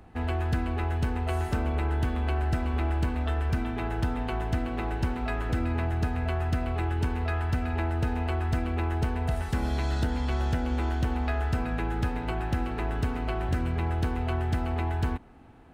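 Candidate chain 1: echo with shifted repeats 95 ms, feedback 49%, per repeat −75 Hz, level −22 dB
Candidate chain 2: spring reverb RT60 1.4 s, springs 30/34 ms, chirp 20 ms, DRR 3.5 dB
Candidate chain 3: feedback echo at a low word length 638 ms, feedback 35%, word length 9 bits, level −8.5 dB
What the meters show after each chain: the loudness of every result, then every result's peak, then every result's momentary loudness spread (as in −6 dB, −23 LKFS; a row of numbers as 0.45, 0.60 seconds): −29.5, −29.0, −28.5 LKFS; −17.5, −15.0, −15.5 dBFS; 2, 2, 3 LU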